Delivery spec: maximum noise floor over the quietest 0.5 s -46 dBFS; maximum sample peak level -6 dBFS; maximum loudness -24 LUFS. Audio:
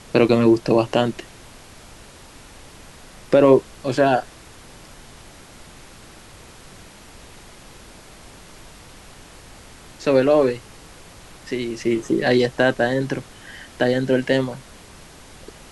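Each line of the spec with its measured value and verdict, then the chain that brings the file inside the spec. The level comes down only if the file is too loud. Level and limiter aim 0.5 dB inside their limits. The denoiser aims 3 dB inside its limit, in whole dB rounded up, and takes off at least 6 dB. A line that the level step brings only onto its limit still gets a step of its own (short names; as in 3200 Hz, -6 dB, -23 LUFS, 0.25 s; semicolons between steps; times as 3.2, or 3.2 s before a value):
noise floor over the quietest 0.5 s -44 dBFS: fail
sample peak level -2.5 dBFS: fail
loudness -19.5 LUFS: fail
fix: gain -5 dB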